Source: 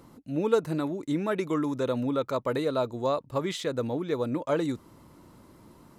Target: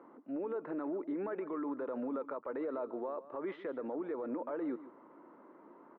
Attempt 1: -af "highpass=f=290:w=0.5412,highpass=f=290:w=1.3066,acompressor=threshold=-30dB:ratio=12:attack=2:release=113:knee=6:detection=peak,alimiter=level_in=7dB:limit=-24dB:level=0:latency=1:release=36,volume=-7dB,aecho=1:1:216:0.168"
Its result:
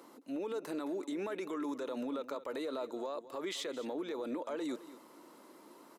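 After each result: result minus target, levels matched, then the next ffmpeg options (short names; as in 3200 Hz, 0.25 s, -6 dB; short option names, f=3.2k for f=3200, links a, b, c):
echo 73 ms late; 2000 Hz band +3.5 dB
-af "highpass=f=290:w=0.5412,highpass=f=290:w=1.3066,acompressor=threshold=-30dB:ratio=12:attack=2:release=113:knee=6:detection=peak,alimiter=level_in=7dB:limit=-24dB:level=0:latency=1:release=36,volume=-7dB,aecho=1:1:143:0.168"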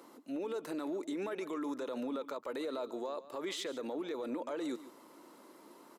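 2000 Hz band +3.5 dB
-af "highpass=f=290:w=0.5412,highpass=f=290:w=1.3066,acompressor=threshold=-30dB:ratio=12:attack=2:release=113:knee=6:detection=peak,lowpass=f=1.7k:w=0.5412,lowpass=f=1.7k:w=1.3066,alimiter=level_in=7dB:limit=-24dB:level=0:latency=1:release=36,volume=-7dB,aecho=1:1:143:0.168"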